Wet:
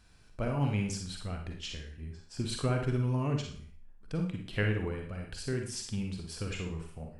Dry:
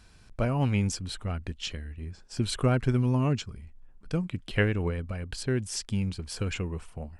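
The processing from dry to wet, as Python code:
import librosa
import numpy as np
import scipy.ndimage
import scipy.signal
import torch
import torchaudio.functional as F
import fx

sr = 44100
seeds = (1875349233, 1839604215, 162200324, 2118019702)

y = fx.rev_schroeder(x, sr, rt60_s=0.47, comb_ms=38, drr_db=2.0)
y = y * 10.0 ** (-6.5 / 20.0)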